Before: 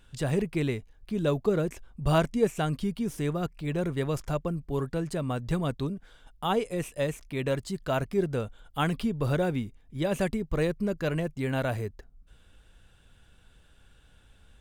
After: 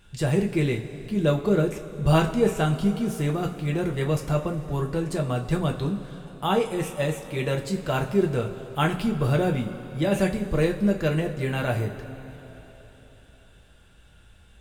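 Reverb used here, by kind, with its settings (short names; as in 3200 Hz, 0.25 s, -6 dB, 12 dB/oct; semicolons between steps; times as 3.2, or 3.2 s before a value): two-slope reverb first 0.24 s, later 3.9 s, from -19 dB, DRR 1 dB; gain +2 dB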